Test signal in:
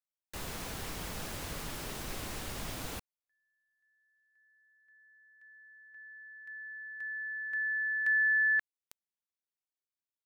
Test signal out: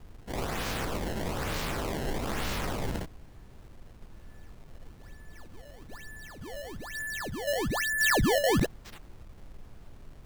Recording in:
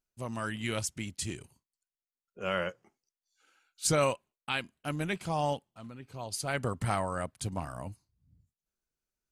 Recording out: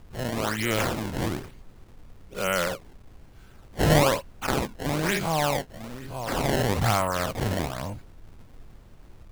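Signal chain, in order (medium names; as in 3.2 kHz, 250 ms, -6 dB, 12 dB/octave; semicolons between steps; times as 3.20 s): every event in the spectrogram widened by 120 ms; added noise brown -49 dBFS; decimation with a swept rate 21×, swing 160% 1.1 Hz; trim +3 dB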